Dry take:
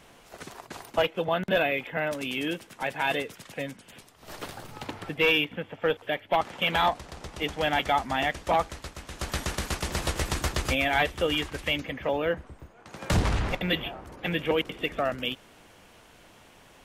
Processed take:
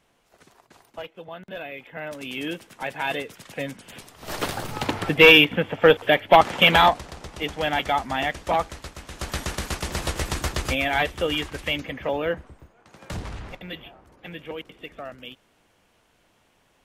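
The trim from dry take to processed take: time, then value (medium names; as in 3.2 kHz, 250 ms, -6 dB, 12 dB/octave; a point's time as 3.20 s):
1.53 s -12 dB
2.43 s 0 dB
3.27 s 0 dB
4.41 s +11 dB
6.63 s +11 dB
7.22 s +1.5 dB
12.33 s +1.5 dB
13.20 s -9.5 dB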